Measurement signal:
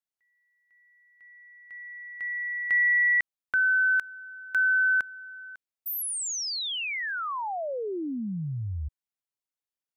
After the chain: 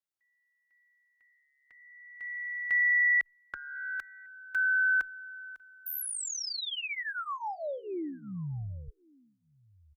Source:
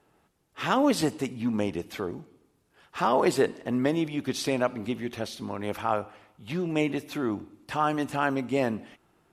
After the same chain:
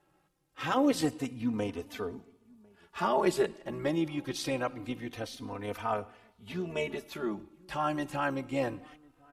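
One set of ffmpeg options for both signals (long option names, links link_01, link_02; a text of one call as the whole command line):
ffmpeg -i in.wav -filter_complex "[0:a]asubboost=boost=3:cutoff=58,tremolo=f=71:d=0.333,asplit=2[link_01][link_02];[link_02]adelay=1050,volume=-27dB,highshelf=frequency=4000:gain=-23.6[link_03];[link_01][link_03]amix=inputs=2:normalize=0,asplit=2[link_04][link_05];[link_05]adelay=3.2,afreqshift=-0.25[link_06];[link_04][link_06]amix=inputs=2:normalize=1" out.wav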